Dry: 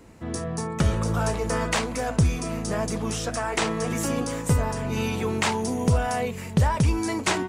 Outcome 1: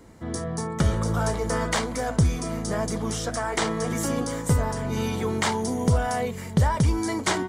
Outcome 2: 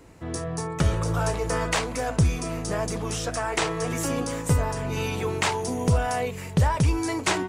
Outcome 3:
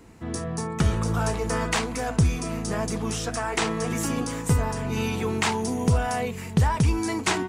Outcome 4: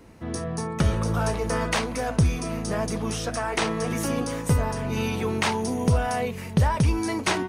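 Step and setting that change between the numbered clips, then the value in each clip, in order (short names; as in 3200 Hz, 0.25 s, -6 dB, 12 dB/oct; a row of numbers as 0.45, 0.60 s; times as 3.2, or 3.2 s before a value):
notch, frequency: 2600, 220, 570, 7400 Hz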